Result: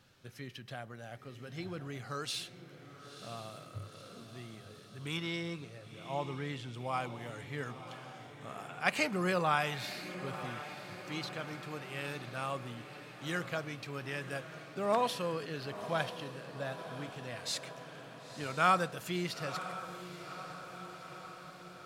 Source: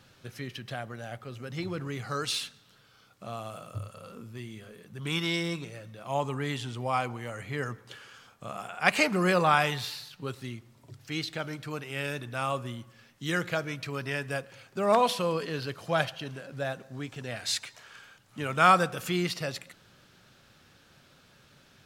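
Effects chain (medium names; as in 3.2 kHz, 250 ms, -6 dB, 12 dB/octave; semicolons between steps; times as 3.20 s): 5.17–6.74 s: low-pass 3.9 kHz 6 dB/octave; echo that smears into a reverb 976 ms, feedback 65%, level -11.5 dB; trim -7 dB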